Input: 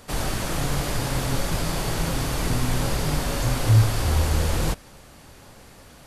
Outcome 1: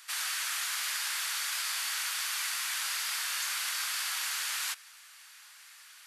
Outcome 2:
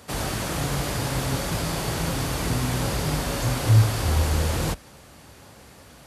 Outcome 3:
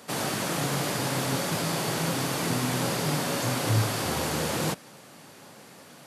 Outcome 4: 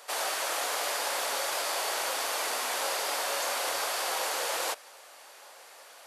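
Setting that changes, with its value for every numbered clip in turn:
high-pass, cutoff frequency: 1.4 kHz, 49 Hz, 140 Hz, 540 Hz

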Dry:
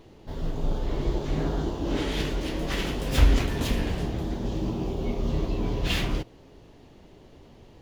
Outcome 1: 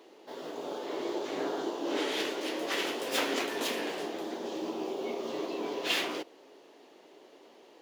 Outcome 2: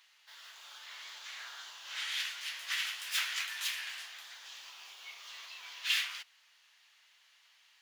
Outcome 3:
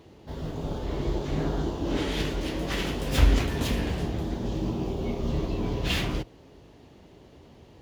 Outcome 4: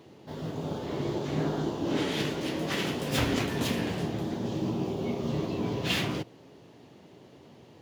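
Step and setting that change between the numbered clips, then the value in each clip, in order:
high-pass, cutoff frequency: 330 Hz, 1.5 kHz, 42 Hz, 110 Hz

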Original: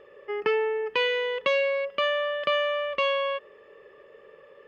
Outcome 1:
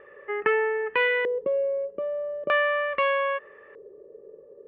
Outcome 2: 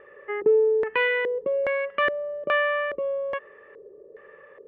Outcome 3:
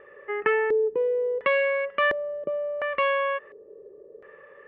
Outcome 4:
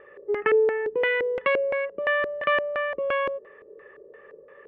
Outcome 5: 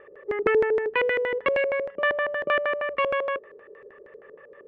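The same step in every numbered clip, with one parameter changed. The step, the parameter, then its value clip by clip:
LFO low-pass, rate: 0.4 Hz, 1.2 Hz, 0.71 Hz, 2.9 Hz, 6.4 Hz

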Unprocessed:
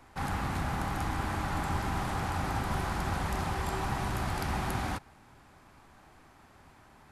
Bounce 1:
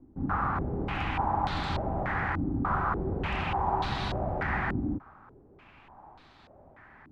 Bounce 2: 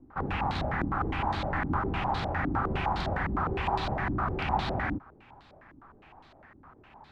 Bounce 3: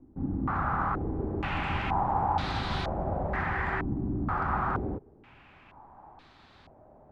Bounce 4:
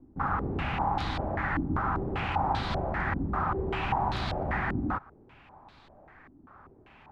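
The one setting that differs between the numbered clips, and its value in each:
step-sequenced low-pass, rate: 3.4 Hz, 9.8 Hz, 2.1 Hz, 5.1 Hz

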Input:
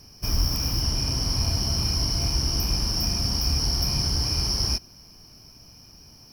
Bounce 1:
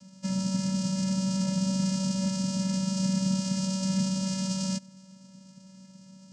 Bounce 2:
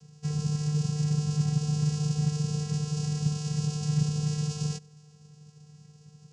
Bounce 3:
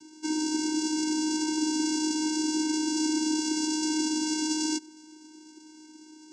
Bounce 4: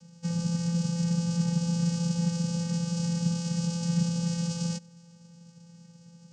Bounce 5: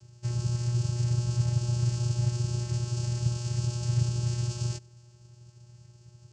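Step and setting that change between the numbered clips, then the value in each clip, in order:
vocoder, frequency: 190 Hz, 150 Hz, 310 Hz, 170 Hz, 120 Hz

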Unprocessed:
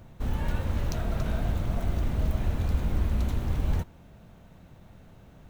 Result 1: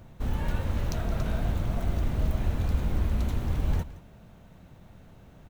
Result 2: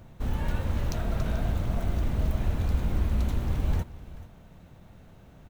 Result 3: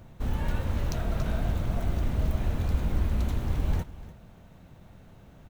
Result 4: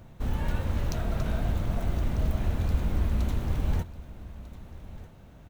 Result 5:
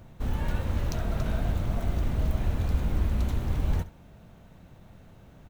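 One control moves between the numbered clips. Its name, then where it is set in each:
feedback delay, time: 169 ms, 435 ms, 296 ms, 1246 ms, 68 ms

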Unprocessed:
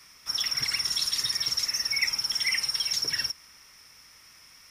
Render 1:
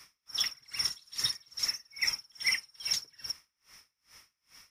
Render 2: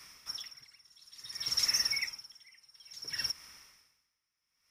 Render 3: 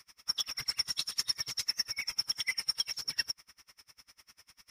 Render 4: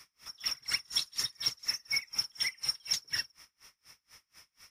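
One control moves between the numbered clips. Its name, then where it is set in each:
logarithmic tremolo, rate: 2.4 Hz, 0.58 Hz, 10 Hz, 4.1 Hz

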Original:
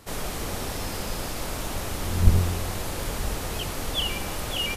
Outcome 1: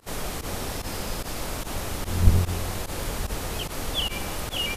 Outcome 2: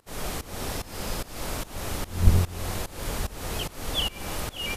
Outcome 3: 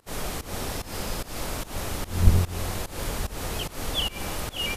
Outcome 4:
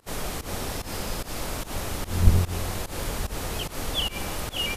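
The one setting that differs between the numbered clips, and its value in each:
volume shaper, release: 63 ms, 339 ms, 206 ms, 131 ms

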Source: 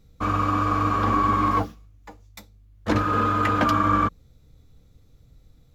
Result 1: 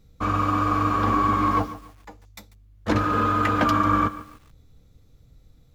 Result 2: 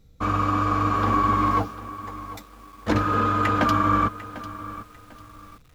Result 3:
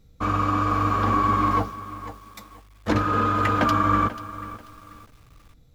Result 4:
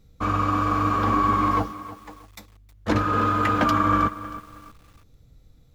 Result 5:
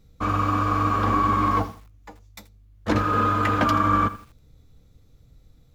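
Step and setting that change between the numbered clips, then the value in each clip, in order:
bit-crushed delay, time: 143 ms, 747 ms, 488 ms, 316 ms, 81 ms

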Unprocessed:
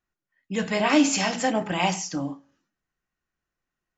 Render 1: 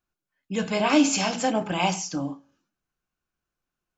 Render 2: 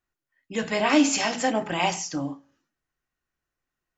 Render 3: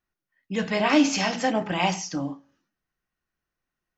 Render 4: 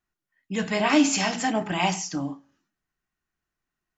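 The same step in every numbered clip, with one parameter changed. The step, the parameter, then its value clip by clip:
band-stop, frequency: 1.9 kHz, 190 Hz, 7.2 kHz, 520 Hz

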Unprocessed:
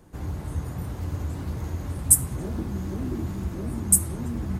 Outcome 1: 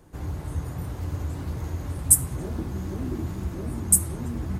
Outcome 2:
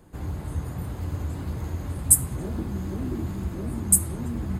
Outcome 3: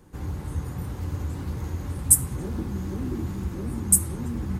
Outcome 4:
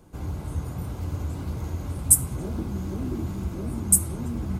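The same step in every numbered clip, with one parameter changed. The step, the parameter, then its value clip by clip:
band-stop, frequency: 210 Hz, 5.7 kHz, 650 Hz, 1.8 kHz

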